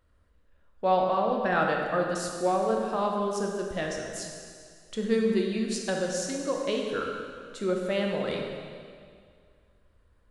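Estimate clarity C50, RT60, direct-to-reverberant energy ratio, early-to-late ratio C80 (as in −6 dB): 2.0 dB, 2.1 s, 0.5 dB, 3.0 dB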